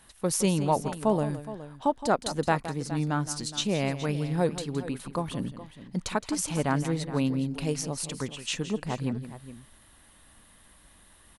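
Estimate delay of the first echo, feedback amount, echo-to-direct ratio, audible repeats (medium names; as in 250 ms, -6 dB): 167 ms, no regular repeats, -10.5 dB, 2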